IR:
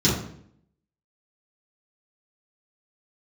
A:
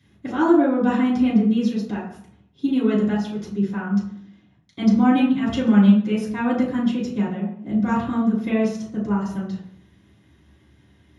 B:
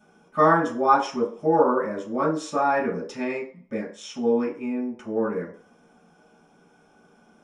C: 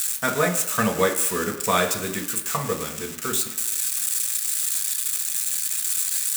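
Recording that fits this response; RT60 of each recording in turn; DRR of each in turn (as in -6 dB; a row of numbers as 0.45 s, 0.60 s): A; 0.65 s, 0.45 s, 1.0 s; -10.0 dB, -8.0 dB, 2.5 dB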